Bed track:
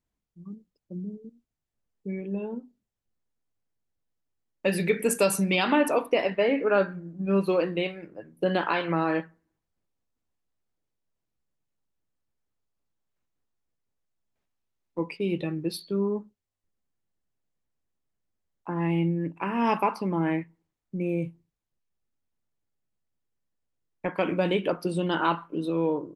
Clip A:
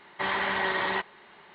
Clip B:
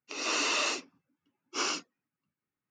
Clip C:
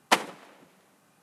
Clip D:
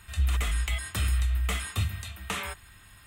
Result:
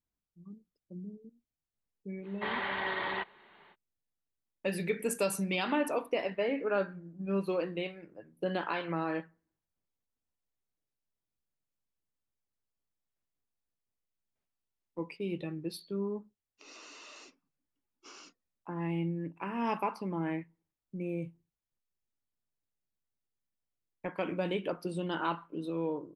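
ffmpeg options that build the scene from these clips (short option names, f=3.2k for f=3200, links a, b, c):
-filter_complex "[0:a]volume=-8dB[a];[2:a]acompressor=threshold=-32dB:ratio=6:attack=3.2:release=140:knee=1:detection=peak[b];[1:a]atrim=end=1.54,asetpts=PTS-STARTPTS,volume=-6.5dB,afade=t=in:d=0.05,afade=t=out:st=1.49:d=0.05,adelay=2220[c];[b]atrim=end=2.7,asetpts=PTS-STARTPTS,volume=-15.5dB,afade=t=in:d=0.004:c=hsin,afade=t=out:st=2.696:d=0.004:c=hsin,adelay=16500[d];[a][c][d]amix=inputs=3:normalize=0"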